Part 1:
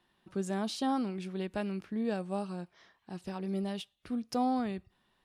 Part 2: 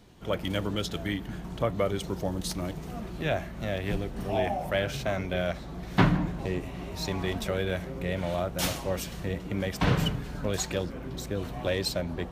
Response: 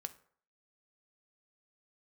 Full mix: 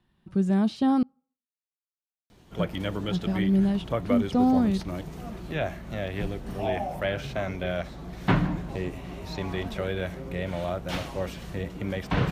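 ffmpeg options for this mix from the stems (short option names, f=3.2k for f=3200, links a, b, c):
-filter_complex "[0:a]bass=f=250:g=15,treble=f=4k:g=-2,dynaudnorm=f=130:g=5:m=6dB,volume=-3.5dB,asplit=3[a][b][c];[a]atrim=end=1.03,asetpts=PTS-STARTPTS,afade=t=out:st=1.026:d=0.004:c=hsin[d];[b]atrim=start=1.03:end=2.59,asetpts=PTS-STARTPTS,volume=0[e];[c]atrim=start=2.59,asetpts=PTS-STARTPTS,afade=t=in:d=0.004:c=hsin[f];[d][e][f]concat=n=3:v=0:a=1,asplit=2[g][h];[h]volume=-20dB[i];[1:a]adelay=2300,volume=-0.5dB[j];[2:a]atrim=start_sample=2205[k];[i][k]afir=irnorm=-1:irlink=0[l];[g][j][l]amix=inputs=3:normalize=0,acrossover=split=3900[m][n];[n]acompressor=threshold=-51dB:ratio=4:attack=1:release=60[o];[m][o]amix=inputs=2:normalize=0,asoftclip=type=hard:threshold=-13dB"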